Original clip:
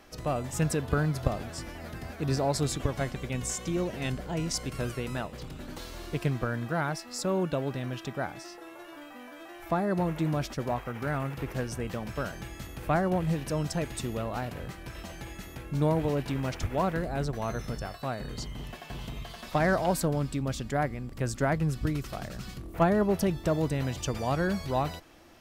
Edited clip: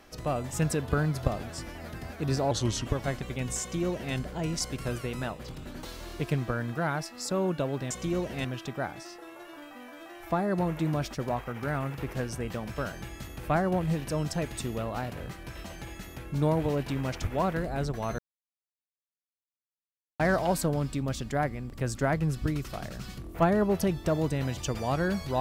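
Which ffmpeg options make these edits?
-filter_complex "[0:a]asplit=7[a][b][c][d][e][f][g];[a]atrim=end=2.514[h];[b]atrim=start=2.51:end=2.79,asetpts=PTS-STARTPTS,asetrate=35721,aresample=44100,atrim=end_sample=15244,asetpts=PTS-STARTPTS[i];[c]atrim=start=2.786:end=7.842[j];[d]atrim=start=3.538:end=4.082[k];[e]atrim=start=7.838:end=17.58,asetpts=PTS-STARTPTS,afade=t=out:st=9.738:d=0.004:c=hsin[l];[f]atrim=start=17.58:end=19.59,asetpts=PTS-STARTPTS,volume=0[m];[g]atrim=start=19.59,asetpts=PTS-STARTPTS,afade=t=in:d=0.004:c=hsin[n];[h][i]acrossfade=d=0.004:c1=hsin:c2=hsin[o];[o][j]acrossfade=d=0.004:c1=hsin:c2=hsin[p];[p][k]acrossfade=d=0.004:c1=hsin:c2=hsin[q];[l][m][n]concat=n=3:v=0:a=1[r];[q][r]acrossfade=d=0.004:c1=hsin:c2=hsin"

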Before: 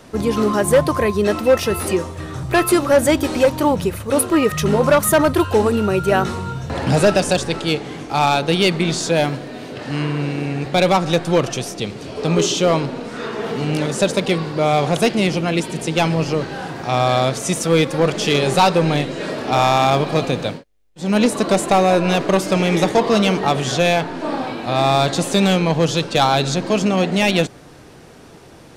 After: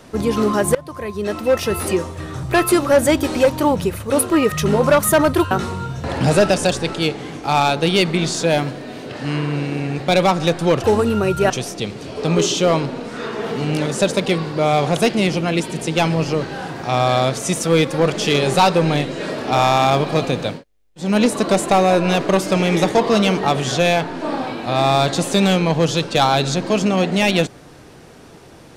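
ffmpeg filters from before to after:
-filter_complex "[0:a]asplit=5[a][b][c][d][e];[a]atrim=end=0.75,asetpts=PTS-STARTPTS,afade=t=out:st=0.746:d=0.004:c=hsin:silence=0.0707946[f];[b]atrim=start=0.75:end=5.512,asetpts=PTS-STARTPTS,afade=t=in:d=1.04:silence=0.0707946[g];[c]atrim=start=6.168:end=11.502[h];[d]atrim=start=5.508:end=6.172[i];[e]atrim=start=11.498[j];[f][g]concat=n=2:v=0:a=1[k];[k][h]acrossfade=d=0.004:c1=hsin:c2=hsin[l];[l][i]acrossfade=d=0.004:c1=hsin:c2=hsin[m];[m][j]acrossfade=d=0.004:c1=hsin:c2=hsin"

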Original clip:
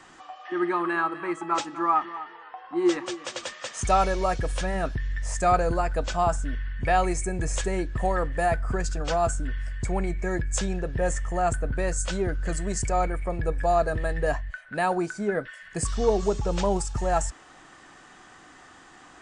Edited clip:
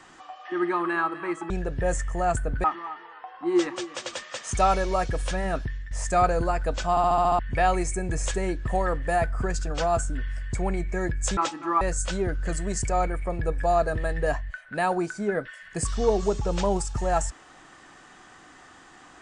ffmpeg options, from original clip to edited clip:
-filter_complex "[0:a]asplit=13[a][b][c][d][e][f][g][h][i][j][k][l][m];[a]atrim=end=1.502[n];[b]atrim=start=10.668:end=11.812[o];[c]atrim=start=1.938:end=5.21,asetpts=PTS-STARTPTS,afade=t=out:st=2.972:d=0.3:silence=0.237137[p];[d]atrim=start=5.21:end=6.272,asetpts=PTS-STARTPTS,afade=t=in:d=0.004:c=hsin:silence=0.237137[q];[e]atrim=start=6.198:end=6.272[r];[f]atrim=start=6.198:end=6.272[s];[g]atrim=start=6.198:end=6.272[t];[h]atrim=start=6.198:end=6.272[u];[i]atrim=start=6.198:end=6.272[v];[j]atrim=start=6.198:end=6.272[w];[k]atrim=start=6.688:end=10.672[x];[l]atrim=start=1.498:end=1.942[y];[m]atrim=start=11.808[z];[n][o]acrossfade=d=0.004:c1=hsin:c2=hsin[aa];[p][q]concat=n=2:v=0:a=1[ab];[aa][ab]acrossfade=d=0.004:c1=hsin:c2=hsin[ac];[ac][r]acrossfade=d=0.004:c1=hsin:c2=hsin[ad];[ad][s]acrossfade=d=0.004:c1=hsin:c2=hsin[ae];[ae][t]acrossfade=d=0.004:c1=hsin:c2=hsin[af];[af][u]acrossfade=d=0.004:c1=hsin:c2=hsin[ag];[ag][v]acrossfade=d=0.004:c1=hsin:c2=hsin[ah];[ah][w]acrossfade=d=0.004:c1=hsin:c2=hsin[ai];[ai][x]acrossfade=d=0.004:c1=hsin:c2=hsin[aj];[aj][y]acrossfade=d=0.004:c1=hsin:c2=hsin[ak];[ak][z]acrossfade=d=0.004:c1=hsin:c2=hsin"

